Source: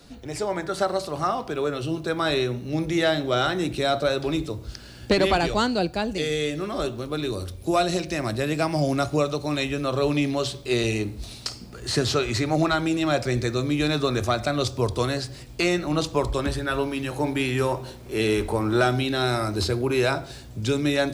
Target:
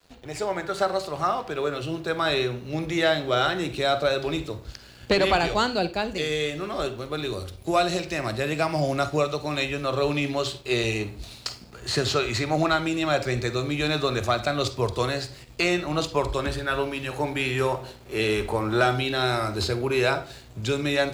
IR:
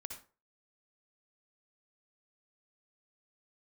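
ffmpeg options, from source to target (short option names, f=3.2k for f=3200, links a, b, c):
-filter_complex "[0:a]equalizer=f=6.9k:t=o:w=0.23:g=4,aeval=exprs='sgn(val(0))*max(abs(val(0))-0.00355,0)':c=same,asplit=2[a][b];[b]highpass=f=240:w=0.5412,highpass=f=240:w=1.3066,equalizer=f=2.6k:t=q:w=4:g=4,equalizer=f=4.6k:t=q:w=4:g=4,equalizer=f=6.8k:t=q:w=4:g=-8,lowpass=f=8.8k:w=0.5412,lowpass=f=8.8k:w=1.3066[c];[1:a]atrim=start_sample=2205,asetrate=61740,aresample=44100[d];[c][d]afir=irnorm=-1:irlink=0,volume=0.5dB[e];[a][e]amix=inputs=2:normalize=0,volume=-2dB"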